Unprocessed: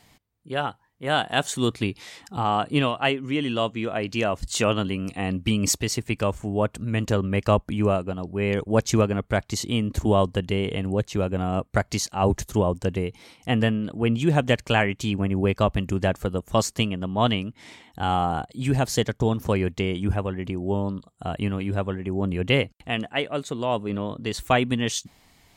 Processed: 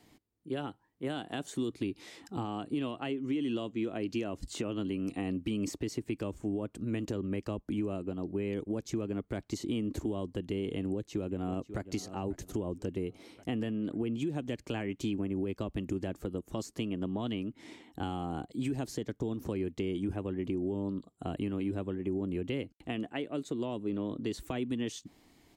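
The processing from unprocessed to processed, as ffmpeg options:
-filter_complex "[0:a]asplit=2[s0][s1];[s1]afade=t=in:st=10.77:d=0.01,afade=t=out:st=11.83:d=0.01,aecho=0:1:540|1080|1620|2160:0.133352|0.0600085|0.0270038|0.0121517[s2];[s0][s2]amix=inputs=2:normalize=0,equalizer=f=320:w=1.4:g=13.5,alimiter=limit=0.237:level=0:latency=1:release=258,acrossover=split=310|2800[s3][s4][s5];[s3]acompressor=threshold=0.0562:ratio=4[s6];[s4]acompressor=threshold=0.0355:ratio=4[s7];[s5]acompressor=threshold=0.0158:ratio=4[s8];[s6][s7][s8]amix=inputs=3:normalize=0,volume=0.376"

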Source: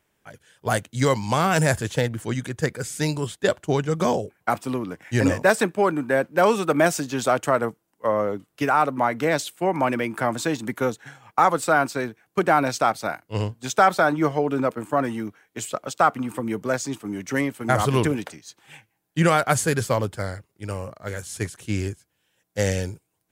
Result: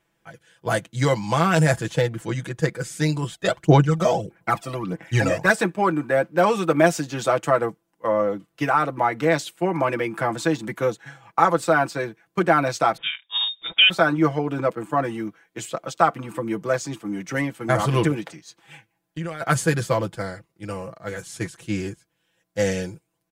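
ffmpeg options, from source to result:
-filter_complex "[0:a]asplit=3[s0][s1][s2];[s0]afade=t=out:st=3.31:d=0.02[s3];[s1]aphaser=in_gain=1:out_gain=1:delay=1.6:decay=0.64:speed=1.6:type=sinusoidal,afade=t=in:st=3.31:d=0.02,afade=t=out:st=5.51:d=0.02[s4];[s2]afade=t=in:st=5.51:d=0.02[s5];[s3][s4][s5]amix=inputs=3:normalize=0,asettb=1/sr,asplit=3[s6][s7][s8];[s6]atrim=end=12.974[s9];[s7]atrim=start=12.97:end=13.9,asetpts=PTS-STARTPTS,afade=t=in:d=0.004:c=qsin,afade=t=out:st=0.926:d=0.004:c=qsin,lowpass=f=3200:t=q:w=0.5098,lowpass=f=3200:t=q:w=0.6013,lowpass=f=3200:t=q:w=0.9,lowpass=f=3200:t=q:w=2.563,afreqshift=-3800[s10];[s8]atrim=start=13.896[s11];[s9][s10]acrossfade=d=0.004:c1=hsin:c2=qsin[s12];[s12][s11]acrossfade=d=0.004:c1=qsin:c2=hsin,asplit=3[s13][s14][s15];[s13]afade=t=out:st=18.2:d=0.02[s16];[s14]acompressor=threshold=0.0316:ratio=6:attack=3.2:release=140:knee=1:detection=peak,afade=t=in:st=18.2:d=0.02,afade=t=out:st=19.4:d=0.02[s17];[s15]afade=t=in:st=19.4:d=0.02[s18];[s16][s17][s18]amix=inputs=3:normalize=0,highshelf=f=7300:g=-7.5,aecho=1:1:6:0.73,volume=0.891"

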